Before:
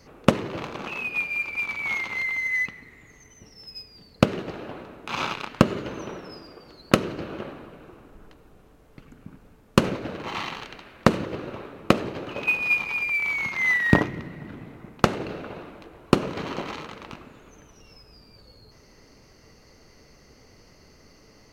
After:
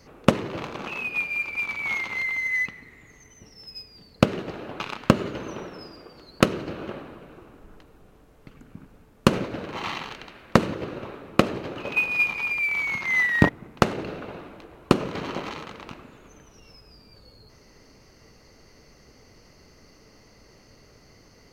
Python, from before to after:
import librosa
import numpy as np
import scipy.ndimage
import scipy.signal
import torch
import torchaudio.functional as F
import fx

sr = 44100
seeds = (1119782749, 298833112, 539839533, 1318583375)

y = fx.edit(x, sr, fx.cut(start_s=4.8, length_s=0.51),
    fx.cut(start_s=14.0, length_s=0.71), tone=tone)